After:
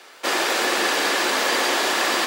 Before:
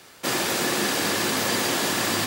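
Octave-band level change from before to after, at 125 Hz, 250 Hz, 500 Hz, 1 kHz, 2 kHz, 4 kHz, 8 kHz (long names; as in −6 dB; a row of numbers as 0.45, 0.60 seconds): below −15 dB, −2.5 dB, +3.0 dB, +5.5 dB, +5.5 dB, +3.0 dB, −0.5 dB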